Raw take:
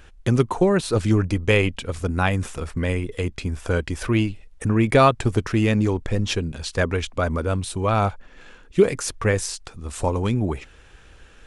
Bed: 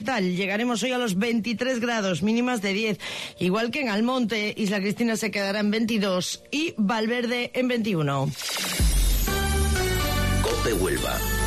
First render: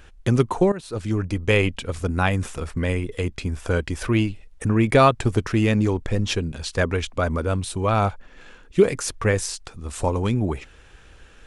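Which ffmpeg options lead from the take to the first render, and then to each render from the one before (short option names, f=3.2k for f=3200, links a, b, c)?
-filter_complex "[0:a]asplit=2[a][b];[a]atrim=end=0.72,asetpts=PTS-STARTPTS,afade=t=out:st=0.716:d=0.004:c=hsin:silence=0.16788[c];[b]atrim=start=0.72,asetpts=PTS-STARTPTS,afade=t=in:d=0.9:silence=0.16788[d];[c][d]concat=n=2:v=0:a=1"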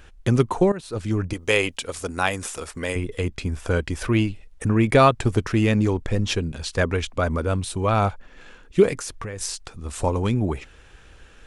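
-filter_complex "[0:a]asettb=1/sr,asplit=3[a][b][c];[a]atrim=end=1.334[d];[b]atrim=start=1.33:end=2.96,asetpts=PTS-STARTPTS,afade=t=in:d=0.004:c=qsin,afade=t=out:st=1.626:d=0.004:c=qsin,bass=f=250:g=-12,treble=f=4k:g=8[e];[c]atrim=start=2.956[f];[d][e]acrossfade=d=0.004:c1=hsin:c2=qsin[g];[g][f]acrossfade=d=0.004:c1=qsin:c2=hsin,asettb=1/sr,asplit=3[h][i][j];[h]atrim=end=8.934[k];[i]atrim=start=8.93:end=9.41,asetpts=PTS-STARTPTS,afade=t=in:d=0.004:c=qsin,afade=t=out:st=0.476:d=0.004:c=qsin,acompressor=threshold=-28dB:ratio=12:attack=3.2:release=140:knee=1:detection=peak[l];[j]atrim=start=9.406[m];[k][l]acrossfade=d=0.004:c1=hsin:c2=qsin[n];[n][m]acrossfade=d=0.004:c1=qsin:c2=hsin"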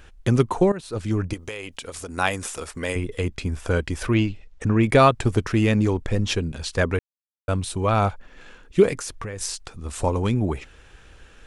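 -filter_complex "[0:a]asettb=1/sr,asplit=3[a][b][c];[a]atrim=end=1.344[d];[b]atrim=start=1.34:end=2.18,asetpts=PTS-STARTPTS,afade=t=in:d=0.004:c=qsin,afade=t=out:st=0.836:d=0.004:c=qsin,acompressor=threshold=-30dB:ratio=6:attack=3.2:release=140:knee=1:detection=peak[e];[c]atrim=start=2.176[f];[d][e]acrossfade=d=0.004:c1=hsin:c2=qsin[g];[g][f]acrossfade=d=0.004:c1=qsin:c2=hsin,asettb=1/sr,asplit=3[h][i][j];[h]atrim=end=4.144[k];[i]atrim=start=4.14:end=4.83,asetpts=PTS-STARTPTS,afade=t=in:d=0.004:c=qsin,afade=t=out:st=0.686:d=0.004:c=qsin,lowpass=f=7.1k:w=0.5412,lowpass=f=7.1k:w=1.3066[l];[j]atrim=start=4.826[m];[k][l]acrossfade=d=0.004:c1=hsin:c2=qsin[n];[n][m]acrossfade=d=0.004:c1=qsin:c2=hsin,asplit=3[o][p][q];[o]atrim=end=6.99,asetpts=PTS-STARTPTS,afade=t=out:st=6.986:d=0.004:c=hsin[r];[p]atrim=start=6.99:end=7.48,asetpts=PTS-STARTPTS,volume=0[s];[q]atrim=start=7.48,asetpts=PTS-STARTPTS,afade=t=in:d=0.004:c=hsin[t];[r][s][t]concat=n=3:v=0:a=1"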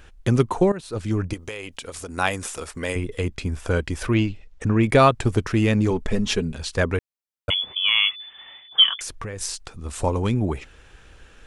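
-filter_complex "[0:a]asettb=1/sr,asplit=3[a][b][c];[a]atrim=end=5.904[d];[b]atrim=start=5.9:end=6.54,asetpts=PTS-STARTPTS,afade=t=in:d=0.004:c=qsin,afade=t=out:st=0.636:d=0.004:c=qsin,aecho=1:1:4.7:0.65,atrim=end_sample=28224[e];[c]atrim=start=6.536[f];[d][e]acrossfade=d=0.004:c1=hsin:c2=qsin[g];[g][f]acrossfade=d=0.004:c1=qsin:c2=hsin,asettb=1/sr,asplit=3[h][i][j];[h]atrim=end=7.504[k];[i]atrim=start=7.5:end=9.01,asetpts=PTS-STARTPTS,afade=t=in:d=0.004:c=qsin,afade=t=out:st=1.506:d=0.004:c=qsin,lowpass=f=3k:t=q:w=0.5098,lowpass=f=3k:t=q:w=0.6013,lowpass=f=3k:t=q:w=0.9,lowpass=f=3k:t=q:w=2.563,afreqshift=-3500[l];[j]atrim=start=9.006[m];[k][l]acrossfade=d=0.004:c1=hsin:c2=qsin[n];[n][m]acrossfade=d=0.004:c1=qsin:c2=hsin"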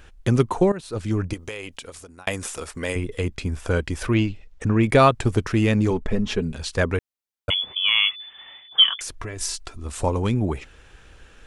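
-filter_complex "[0:a]asettb=1/sr,asplit=3[a][b][c];[a]atrim=end=5.994[d];[b]atrim=start=5.99:end=6.42,asetpts=PTS-STARTPTS,afade=t=in:d=0.004:c=qsin,afade=t=out:st=0.426:d=0.004:c=qsin,highshelf=f=3.8k:g=-11.5[e];[c]atrim=start=6.416[f];[d][e]acrossfade=d=0.004:c1=hsin:c2=qsin[g];[g][f]acrossfade=d=0.004:c1=qsin:c2=hsin,asettb=1/sr,asplit=3[h][i][j];[h]atrim=end=9.194[k];[i]atrim=start=9.19:end=9.84,asetpts=PTS-STARTPTS,afade=t=in:d=0.004:c=qsin,afade=t=out:st=0.646:d=0.004:c=qsin,aecho=1:1:3:0.65,atrim=end_sample=28665[l];[j]atrim=start=9.836[m];[k][l]acrossfade=d=0.004:c1=hsin:c2=qsin[n];[n][m]acrossfade=d=0.004:c1=qsin:c2=hsin,asplit=2[o][p];[o]atrim=end=2.27,asetpts=PTS-STARTPTS,afade=t=out:st=1.69:d=0.58[q];[p]atrim=start=2.27,asetpts=PTS-STARTPTS,afade=t=in:d=0.004:c=hsin[r];[q][r]concat=n=2:v=0:a=1"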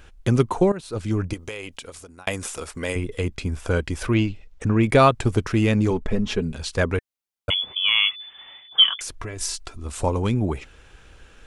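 -af "bandreject=f=1.8k:w=22"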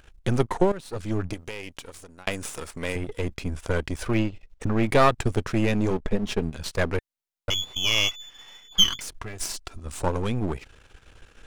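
-af "aeval=exprs='if(lt(val(0),0),0.251*val(0),val(0))':c=same"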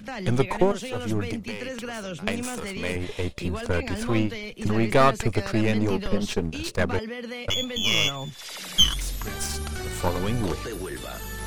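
-filter_complex "[1:a]volume=-9.5dB[a];[0:a][a]amix=inputs=2:normalize=0"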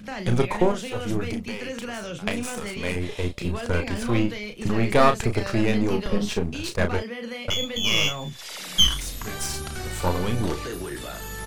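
-filter_complex "[0:a]asplit=2[a][b];[b]adelay=34,volume=-7dB[c];[a][c]amix=inputs=2:normalize=0"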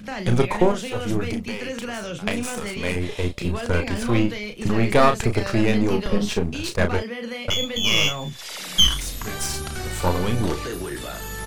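-af "volume=2.5dB,alimiter=limit=-3dB:level=0:latency=1"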